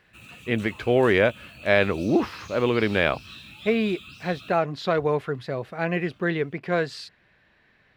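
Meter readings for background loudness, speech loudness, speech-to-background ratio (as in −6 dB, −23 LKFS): −43.0 LKFS, −24.5 LKFS, 18.5 dB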